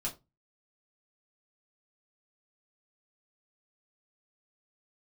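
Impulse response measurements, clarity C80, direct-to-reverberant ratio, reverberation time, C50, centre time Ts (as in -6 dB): 21.5 dB, -4.0 dB, 0.25 s, 15.5 dB, 15 ms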